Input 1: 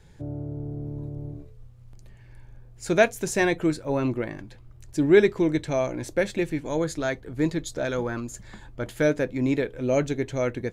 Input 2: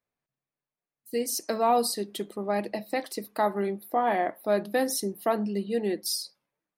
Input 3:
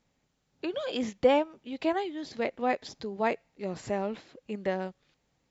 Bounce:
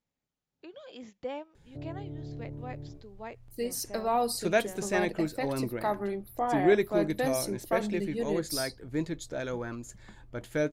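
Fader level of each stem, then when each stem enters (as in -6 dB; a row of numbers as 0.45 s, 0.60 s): -7.0 dB, -4.5 dB, -14.5 dB; 1.55 s, 2.45 s, 0.00 s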